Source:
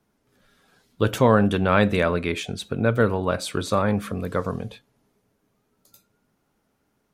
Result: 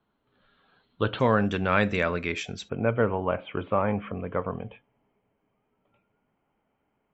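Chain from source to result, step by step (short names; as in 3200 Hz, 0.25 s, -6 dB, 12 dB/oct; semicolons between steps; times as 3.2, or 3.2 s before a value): rippled Chebyshev low-pass 4300 Hz, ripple 6 dB, from 1.19 s 7600 Hz, from 2.68 s 3200 Hz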